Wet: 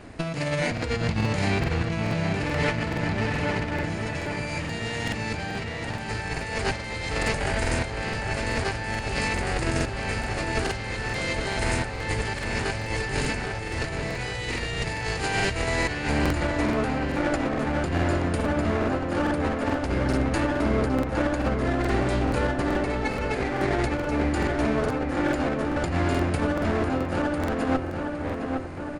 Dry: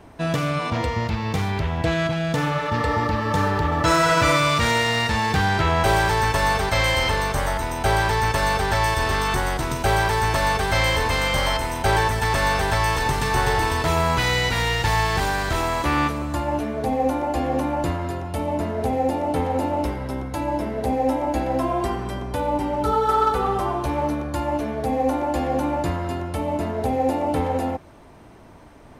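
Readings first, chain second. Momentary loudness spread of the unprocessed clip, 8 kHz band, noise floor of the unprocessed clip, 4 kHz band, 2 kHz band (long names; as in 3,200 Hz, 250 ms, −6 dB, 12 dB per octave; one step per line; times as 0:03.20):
6 LU, −6.0 dB, −32 dBFS, −7.0 dB, −4.0 dB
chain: lower of the sound and its delayed copy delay 0.44 ms
mains-hum notches 50/100/150/200 Hz
compressor whose output falls as the input rises −27 dBFS, ratio −0.5
feedback echo with a low-pass in the loop 811 ms, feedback 66%, low-pass 3,200 Hz, level −5 dB
downsampling to 22,050 Hz
regular buffer underruns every 0.43 s, samples 2,048, repeat, from 0:00.73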